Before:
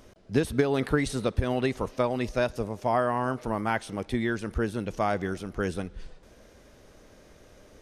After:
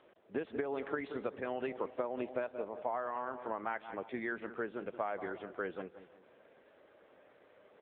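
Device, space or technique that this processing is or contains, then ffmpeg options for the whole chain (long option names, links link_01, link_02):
voicemail: -filter_complex "[0:a]asettb=1/sr,asplit=3[link_01][link_02][link_03];[link_01]atrim=end=1.714[link_04];[link_02]atrim=start=1.71:end=2.4,asetpts=PTS-STARTPTS,afade=type=in:duration=0.004:curve=qsin,afade=type=out:start_time=0.686:duration=0.004:curve=qsin,equalizer=frequency=310:width_type=o:width=0.93:gain=5.5[link_05];[link_03]atrim=start=2.396[link_06];[link_04][link_05]acrossfade=duration=0.004:curve1=hsin:curve2=qsin[link_07];[link_07][link_06]acrossfade=duration=0.004:curve1=qsin:curve2=hsin,highpass=410,lowpass=2700,asplit=2[link_08][link_09];[link_09]adelay=177,lowpass=frequency=1500:poles=1,volume=-13dB,asplit=2[link_10][link_11];[link_11]adelay=177,lowpass=frequency=1500:poles=1,volume=0.41,asplit=2[link_12][link_13];[link_13]adelay=177,lowpass=frequency=1500:poles=1,volume=0.41,asplit=2[link_14][link_15];[link_15]adelay=177,lowpass=frequency=1500:poles=1,volume=0.41[link_16];[link_08][link_10][link_12][link_14][link_16]amix=inputs=5:normalize=0,acompressor=threshold=-28dB:ratio=8,volume=-3.5dB" -ar 8000 -c:a libopencore_amrnb -b:a 7950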